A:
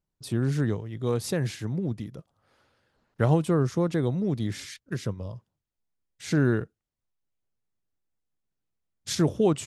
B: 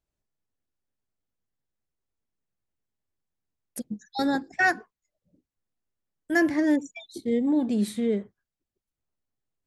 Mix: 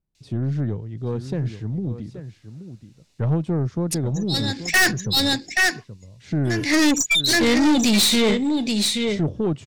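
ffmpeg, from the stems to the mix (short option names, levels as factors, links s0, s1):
-filter_complex "[0:a]lowshelf=f=460:g=11,volume=0.237,asplit=3[s0][s1][s2];[s1]volume=0.237[s3];[1:a]acontrast=90,bandreject=f=3200:w=9.7,aexciter=amount=6.5:drive=9.1:freq=2100,adelay=150,volume=0.75,asplit=2[s4][s5];[s5]volume=0.398[s6];[s2]apad=whole_len=432641[s7];[s4][s7]sidechaincompress=threshold=0.00501:ratio=5:attack=6.5:release=116[s8];[s3][s6]amix=inputs=2:normalize=0,aecho=0:1:828:1[s9];[s0][s8][s9]amix=inputs=3:normalize=0,lowpass=5200,acontrast=70,aeval=exprs='(tanh(5.01*val(0)+0.2)-tanh(0.2))/5.01':c=same"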